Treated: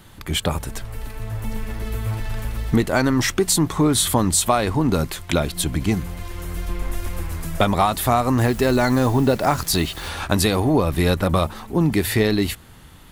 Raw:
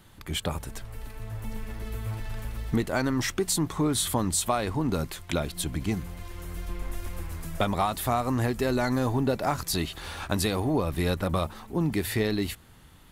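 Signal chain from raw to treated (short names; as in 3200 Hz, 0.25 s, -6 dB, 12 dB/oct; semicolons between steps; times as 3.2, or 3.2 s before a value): 8.38–10.09 requantised 8-bit, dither none; gain +8 dB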